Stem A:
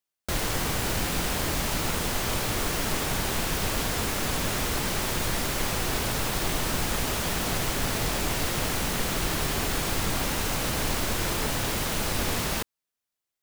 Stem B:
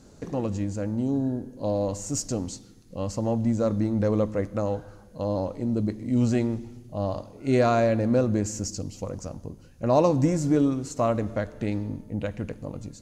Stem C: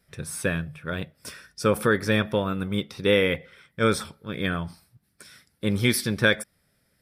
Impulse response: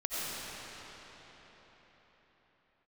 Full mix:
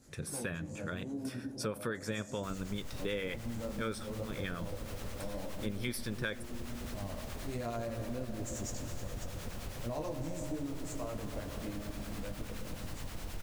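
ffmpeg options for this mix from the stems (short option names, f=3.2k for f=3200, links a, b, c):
-filter_complex "[0:a]acrossover=split=130[a][b];[b]acompressor=threshold=-36dB:ratio=6[c];[a][c]amix=inputs=2:normalize=0,adelay=2150,volume=-10.5dB,asplit=2[d][e];[e]volume=-5dB[f];[1:a]equalizer=f=11k:t=o:w=1:g=14,flanger=delay=19.5:depth=6.3:speed=0.45,volume=-7dB,asplit=2[g][h];[h]volume=-11dB[i];[2:a]volume=-1.5dB,asplit=2[j][k];[k]apad=whole_len=574140[l];[g][l]sidechaincompress=threshold=-28dB:ratio=8:attack=16:release=390[m];[3:a]atrim=start_sample=2205[n];[f][i]amix=inputs=2:normalize=0[o];[o][n]afir=irnorm=-1:irlink=0[p];[d][m][j][p]amix=inputs=4:normalize=0,acrossover=split=830[q][r];[q]aeval=exprs='val(0)*(1-0.5/2+0.5/2*cos(2*PI*9.5*n/s))':c=same[s];[r]aeval=exprs='val(0)*(1-0.5/2-0.5/2*cos(2*PI*9.5*n/s))':c=same[t];[s][t]amix=inputs=2:normalize=0,acompressor=threshold=-37dB:ratio=3"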